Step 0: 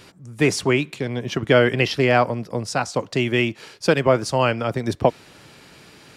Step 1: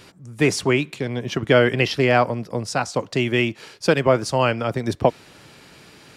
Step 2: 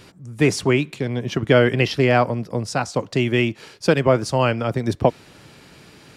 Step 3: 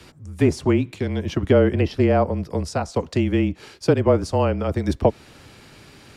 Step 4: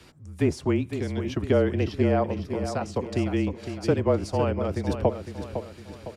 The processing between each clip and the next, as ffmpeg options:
ffmpeg -i in.wav -af anull out.wav
ffmpeg -i in.wav -af "lowshelf=frequency=340:gain=4.5,volume=-1dB" out.wav
ffmpeg -i in.wav -filter_complex "[0:a]acrossover=split=390|990[link_01][link_02][link_03];[link_03]acompressor=threshold=-33dB:ratio=6[link_04];[link_01][link_02][link_04]amix=inputs=3:normalize=0,afreqshift=-31" out.wav
ffmpeg -i in.wav -af "aecho=1:1:507|1014|1521|2028|2535:0.355|0.16|0.0718|0.0323|0.0145,volume=-5.5dB" out.wav

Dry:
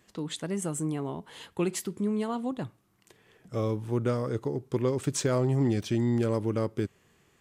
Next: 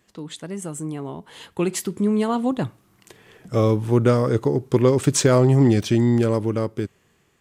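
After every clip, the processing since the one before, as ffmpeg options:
ffmpeg -i in.wav -af "dynaudnorm=framelen=410:gausssize=9:maxgain=11.5dB" out.wav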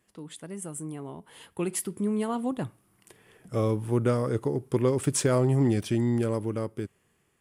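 ffmpeg -i in.wav -af "equalizer=frequency=4000:width_type=o:width=0.33:gain=-5,equalizer=frequency=6300:width_type=o:width=0.33:gain=-4,equalizer=frequency=10000:width_type=o:width=0.33:gain=12,volume=-7.5dB" out.wav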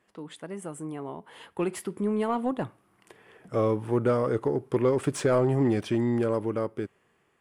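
ffmpeg -i in.wav -filter_complex "[0:a]asplit=2[link_01][link_02];[link_02]highpass=frequency=720:poles=1,volume=14dB,asoftclip=type=tanh:threshold=-11.5dB[link_03];[link_01][link_03]amix=inputs=2:normalize=0,lowpass=frequency=1200:poles=1,volume=-6dB" out.wav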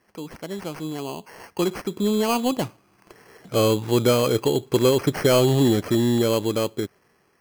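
ffmpeg -i in.wav -af "acrusher=samples=12:mix=1:aa=0.000001,volume=5.5dB" out.wav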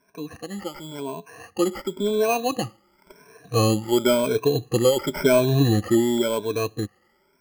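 ffmpeg -i in.wav -af "afftfilt=real='re*pow(10,23/40*sin(2*PI*(1.6*log(max(b,1)*sr/1024/100)/log(2)-(0.94)*(pts-256)/sr)))':imag='im*pow(10,23/40*sin(2*PI*(1.6*log(max(b,1)*sr/1024/100)/log(2)-(0.94)*(pts-256)/sr)))':win_size=1024:overlap=0.75,volume=-6dB" out.wav

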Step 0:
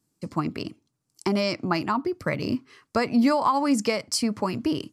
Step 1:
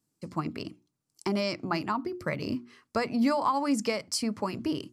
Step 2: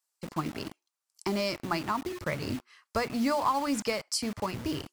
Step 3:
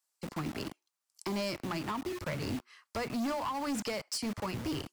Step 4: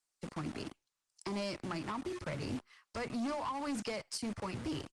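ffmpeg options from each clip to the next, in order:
ffmpeg -i in.wav -af "bandreject=frequency=60:width_type=h:width=6,bandreject=frequency=120:width_type=h:width=6,bandreject=frequency=180:width_type=h:width=6,bandreject=frequency=240:width_type=h:width=6,bandreject=frequency=300:width_type=h:width=6,bandreject=frequency=360:width_type=h:width=6,volume=-4.5dB" out.wav
ffmpeg -i in.wav -filter_complex "[0:a]asubboost=boost=7.5:cutoff=81,acrossover=split=660[link_01][link_02];[link_01]acrusher=bits=6:mix=0:aa=0.000001[link_03];[link_03][link_02]amix=inputs=2:normalize=0" out.wav
ffmpeg -i in.wav -filter_complex "[0:a]acrossover=split=250[link_01][link_02];[link_02]acompressor=threshold=-30dB:ratio=5[link_03];[link_01][link_03]amix=inputs=2:normalize=0,asoftclip=type=hard:threshold=-30.5dB" out.wav
ffmpeg -i in.wav -af "aresample=22050,aresample=44100,volume=-2.5dB" -ar 48000 -c:a libopus -b:a 20k out.opus

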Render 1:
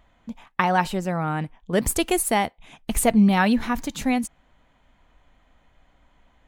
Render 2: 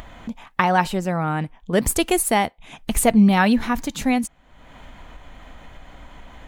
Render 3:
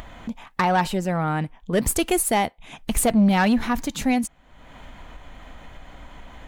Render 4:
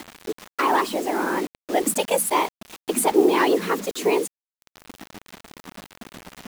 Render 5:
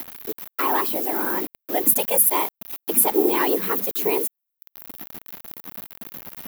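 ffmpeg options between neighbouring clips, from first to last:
ffmpeg -i in.wav -af "acompressor=mode=upward:threshold=-29dB:ratio=2.5,volume=2.5dB" out.wav
ffmpeg -i in.wav -af "asoftclip=type=tanh:threshold=-12dB" out.wav
ffmpeg -i in.wav -af "afftfilt=real='hypot(re,im)*cos(2*PI*random(0))':imag='hypot(re,im)*sin(2*PI*random(1))':win_size=512:overlap=0.75,afreqshift=170,acrusher=bits=6:mix=0:aa=0.000001,volume=5.5dB" out.wav
ffmpeg -i in.wav -af "aexciter=amount=9.8:drive=4.9:freq=11000,volume=-3dB" out.wav

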